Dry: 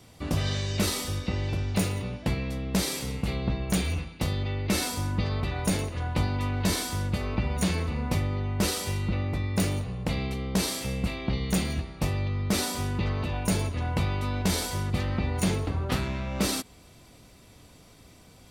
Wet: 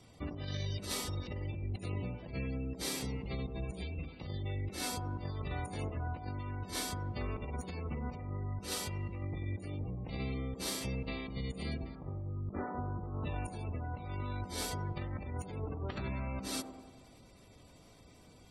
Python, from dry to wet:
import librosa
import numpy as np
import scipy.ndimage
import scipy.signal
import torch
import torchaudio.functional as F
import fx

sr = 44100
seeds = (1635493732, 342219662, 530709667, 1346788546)

y = fx.lowpass(x, sr, hz=1600.0, slope=24, at=(11.95, 13.25))
y = fx.spec_gate(y, sr, threshold_db=-25, keep='strong')
y = fx.over_compress(y, sr, threshold_db=-30.0, ratio=-0.5)
y = fx.echo_wet_bandpass(y, sr, ms=96, feedback_pct=60, hz=490.0, wet_db=-5.5)
y = F.gain(torch.from_numpy(y), -8.0).numpy()